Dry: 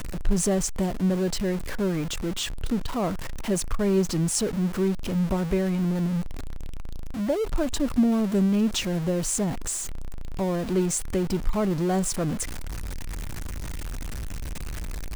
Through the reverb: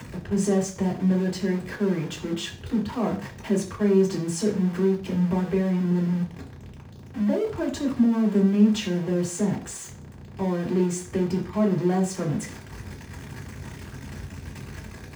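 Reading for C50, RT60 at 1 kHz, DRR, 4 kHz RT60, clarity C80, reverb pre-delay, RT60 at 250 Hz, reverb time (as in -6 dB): 11.5 dB, 0.40 s, -2.5 dB, 0.40 s, 15.5 dB, 3 ms, 0.40 s, 0.40 s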